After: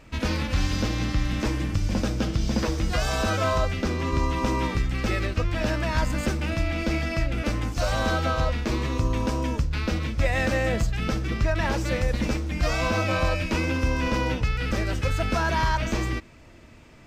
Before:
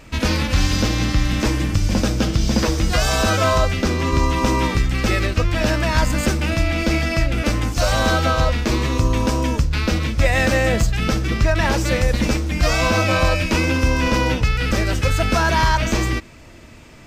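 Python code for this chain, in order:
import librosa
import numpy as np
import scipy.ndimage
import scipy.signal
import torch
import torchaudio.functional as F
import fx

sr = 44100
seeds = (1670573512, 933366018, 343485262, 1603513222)

y = fx.high_shelf(x, sr, hz=4400.0, db=-5.5)
y = y * librosa.db_to_amplitude(-6.5)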